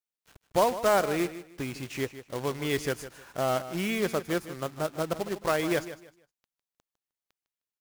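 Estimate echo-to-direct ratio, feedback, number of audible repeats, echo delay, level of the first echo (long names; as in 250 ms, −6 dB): −13.0 dB, 25%, 2, 154 ms, −13.5 dB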